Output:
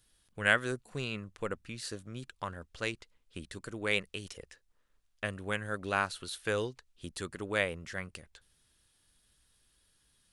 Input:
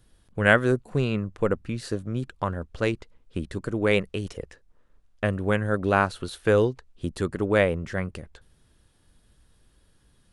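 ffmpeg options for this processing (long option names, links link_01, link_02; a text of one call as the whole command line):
ffmpeg -i in.wav -af "tiltshelf=frequency=1400:gain=-7.5,volume=-7dB" out.wav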